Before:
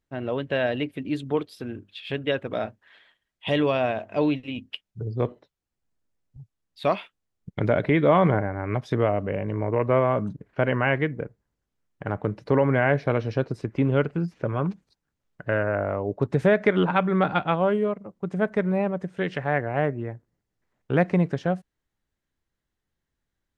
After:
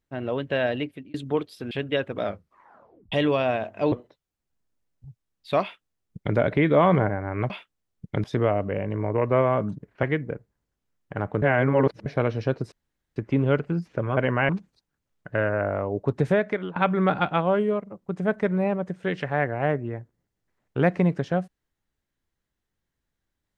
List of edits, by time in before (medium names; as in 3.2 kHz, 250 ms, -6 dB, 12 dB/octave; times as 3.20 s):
0.65–1.14 s: fade out equal-power
1.71–2.06 s: delete
2.58 s: tape stop 0.89 s
4.27–5.24 s: delete
6.94–7.68 s: copy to 8.82 s
10.61–10.93 s: move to 14.63 s
12.32–12.96 s: reverse
13.62 s: insert room tone 0.44 s
16.35–16.90 s: fade out, to -19.5 dB